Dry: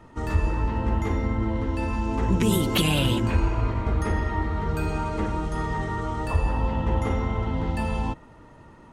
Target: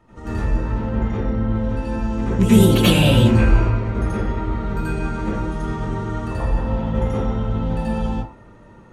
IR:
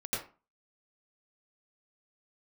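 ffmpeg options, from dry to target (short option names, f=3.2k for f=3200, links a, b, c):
-filter_complex "[0:a]asettb=1/sr,asplit=3[a][b][c];[a]atrim=end=0.864[d];[b]atrim=start=0.86:end=1.47,asetpts=PTS-STARTPTS,afade=t=in:d=0.004:c=qsin,afade=t=out:st=0.606:d=0.004:c=qsin,lowpass=4.8k[e];[c]atrim=start=1.466[f];[d][e]acrossfade=d=0.004:c1=hsin:c2=qsin[g];[g][f]acrossfade=d=0.004:c1=qsin:c2=hsin,asplit=3[h][i][j];[h]afade=t=out:st=2.41:d=0.02[k];[i]acontrast=20,afade=t=in:st=2.41:d=0.02,afade=t=out:st=3.59:d=0.02[l];[j]afade=t=in:st=3.59:d=0.02[m];[k][l][m]amix=inputs=3:normalize=0[n];[1:a]atrim=start_sample=2205[o];[n][o]afir=irnorm=-1:irlink=0,volume=-2dB"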